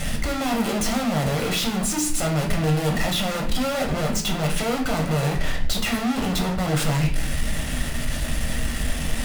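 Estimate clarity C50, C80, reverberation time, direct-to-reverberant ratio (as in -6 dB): 9.0 dB, 12.5 dB, 0.50 s, 1.0 dB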